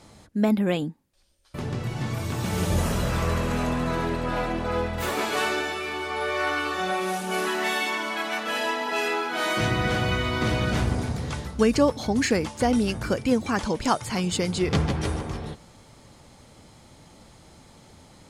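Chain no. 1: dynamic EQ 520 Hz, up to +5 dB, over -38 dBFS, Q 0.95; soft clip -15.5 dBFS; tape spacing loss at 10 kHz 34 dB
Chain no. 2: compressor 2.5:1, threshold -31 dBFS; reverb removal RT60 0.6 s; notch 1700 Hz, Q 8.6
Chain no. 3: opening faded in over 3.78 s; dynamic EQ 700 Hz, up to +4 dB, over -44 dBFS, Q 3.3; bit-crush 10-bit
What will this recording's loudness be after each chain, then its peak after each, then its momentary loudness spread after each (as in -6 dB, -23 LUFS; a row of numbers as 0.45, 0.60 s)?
-27.5, -34.0, -25.5 LUFS; -16.5, -17.5, -7.0 dBFS; 6, 20, 12 LU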